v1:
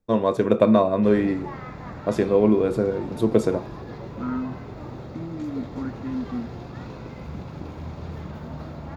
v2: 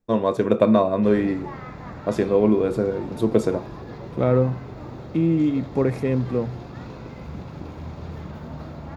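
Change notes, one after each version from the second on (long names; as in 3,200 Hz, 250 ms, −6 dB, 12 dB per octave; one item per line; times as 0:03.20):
second voice: remove pair of resonant band-passes 580 Hz, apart 2.5 octaves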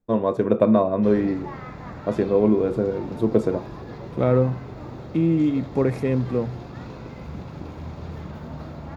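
first voice: add high-shelf EQ 2,100 Hz −10.5 dB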